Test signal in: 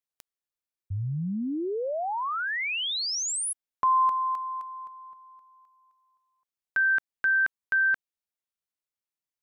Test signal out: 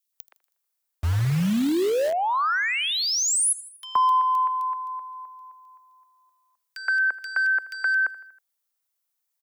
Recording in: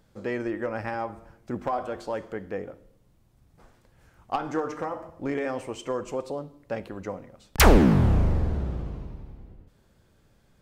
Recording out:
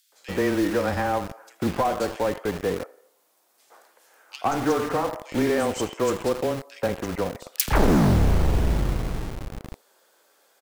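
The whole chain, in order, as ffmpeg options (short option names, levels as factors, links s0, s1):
-filter_complex "[0:a]asoftclip=type=tanh:threshold=0.0944,asplit=2[s0][s1];[s1]aecho=0:1:80|160|240|320:0.1|0.052|0.027|0.0141[s2];[s0][s2]amix=inputs=2:normalize=0,acrossover=split=400|1300[s3][s4][s5];[s3]acompressor=threshold=0.0631:ratio=5[s6];[s4]acompressor=threshold=0.0316:ratio=4[s7];[s5]acompressor=threshold=0.0251:ratio=5[s8];[s6][s7][s8]amix=inputs=3:normalize=0,afreqshift=-15,highshelf=f=10000:g=9.5,acrossover=split=2500[s9][s10];[s9]adelay=120[s11];[s11][s10]amix=inputs=2:normalize=0,acrossover=split=440|920[s12][s13][s14];[s12]acrusher=bits=6:mix=0:aa=0.000001[s15];[s15][s13][s14]amix=inputs=3:normalize=0,volume=2.51"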